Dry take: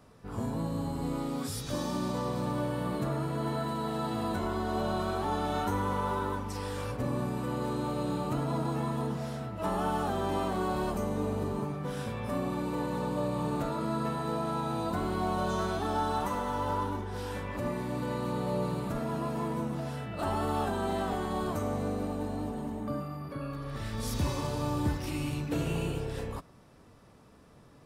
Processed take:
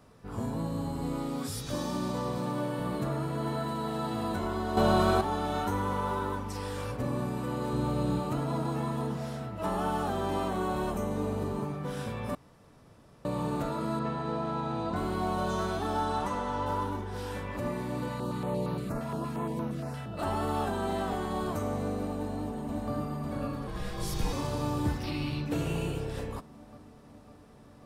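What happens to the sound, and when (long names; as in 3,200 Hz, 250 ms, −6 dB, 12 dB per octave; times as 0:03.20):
0:02.38–0:02.80: high-pass filter 120 Hz 24 dB per octave
0:04.77–0:05.21: clip gain +7.5 dB
0:07.73–0:08.20: low-shelf EQ 150 Hz +10.5 dB
0:10.49–0:11.11: notch filter 4,700 Hz, Q 5.9
0:12.35–0:13.25: fill with room tone
0:13.99–0:14.96: high-frequency loss of the air 100 metres
0:16.04–0:16.65: low-pass filter 11,000 Hz → 6,500 Hz
0:18.08–0:20.18: notch on a step sequencer 8.6 Hz 370–7,900 Hz
0:22.13–0:22.92: delay throw 550 ms, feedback 75%, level −2.5 dB
0:23.67–0:24.33: frequency shifter −100 Hz
0:25.03–0:25.46: high shelf with overshoot 5,600 Hz −8 dB, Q 3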